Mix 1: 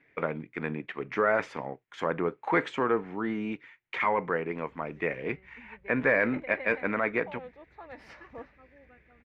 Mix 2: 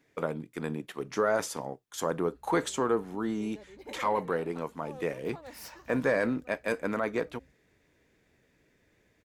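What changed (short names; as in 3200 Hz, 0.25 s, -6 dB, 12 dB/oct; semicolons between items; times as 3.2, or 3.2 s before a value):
second voice: entry -1.30 s; background: entry -2.45 s; master: remove synth low-pass 2200 Hz, resonance Q 3.1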